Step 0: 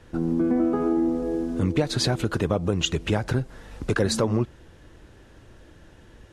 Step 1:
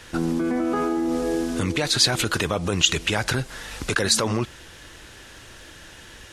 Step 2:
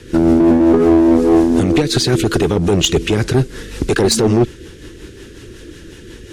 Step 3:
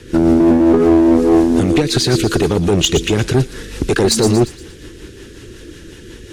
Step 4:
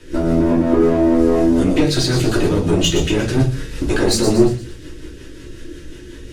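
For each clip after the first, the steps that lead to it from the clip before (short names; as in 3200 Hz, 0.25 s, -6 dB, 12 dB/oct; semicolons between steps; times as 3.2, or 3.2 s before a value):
tilt shelf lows -9 dB, about 1100 Hz; in parallel at +1.5 dB: negative-ratio compressor -32 dBFS, ratio -1
resonant low shelf 520 Hz +8.5 dB, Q 3; rotary speaker horn 5.5 Hz; one-sided clip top -15.5 dBFS; gain +4.5 dB
thin delay 0.117 s, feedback 46%, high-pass 3100 Hz, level -7 dB
shoebox room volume 150 m³, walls furnished, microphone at 2.8 m; gain -8.5 dB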